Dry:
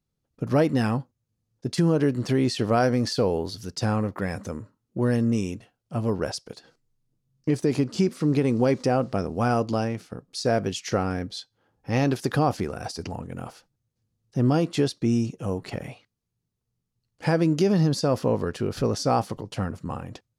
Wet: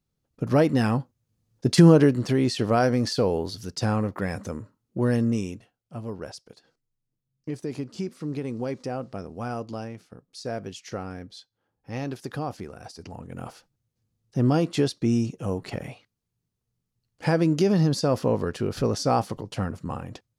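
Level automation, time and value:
0:00.87 +1 dB
0:01.87 +8 dB
0:02.25 0 dB
0:05.21 0 dB
0:06.05 −9 dB
0:12.99 −9 dB
0:13.47 0 dB

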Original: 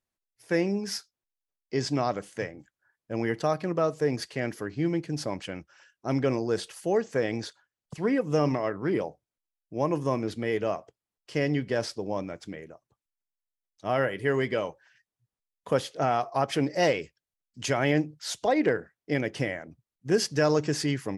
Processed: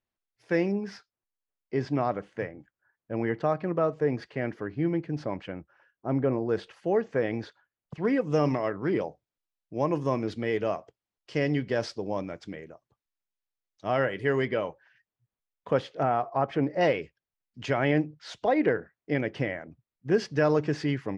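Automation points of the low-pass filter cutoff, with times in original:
3,900 Hz
from 0:00.72 2,200 Hz
from 0:05.52 1,300 Hz
from 0:06.49 2,500 Hz
from 0:08.05 5,200 Hz
from 0:14.45 2,900 Hz
from 0:16.03 1,700 Hz
from 0:16.81 2,900 Hz

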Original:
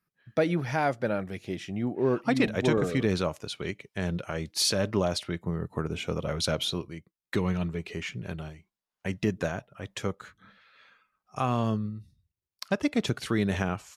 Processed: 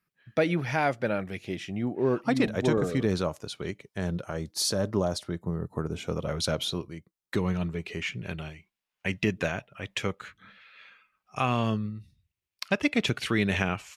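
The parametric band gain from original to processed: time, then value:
parametric band 2,500 Hz 1 octave
0:01.37 +5 dB
0:02.66 −5 dB
0:03.98 −5 dB
0:04.69 −12 dB
0:05.76 −12 dB
0:06.19 −2.5 dB
0:07.42 −2.5 dB
0:08.48 +9.5 dB

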